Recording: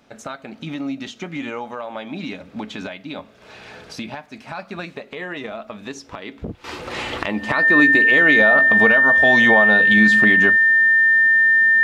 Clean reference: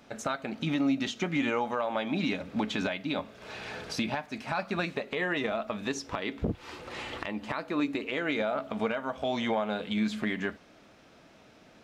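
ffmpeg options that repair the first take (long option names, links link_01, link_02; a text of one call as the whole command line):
ffmpeg -i in.wav -af "bandreject=frequency=1800:width=30,asetnsamples=nb_out_samples=441:pad=0,asendcmd='6.64 volume volume -11.5dB',volume=0dB" out.wav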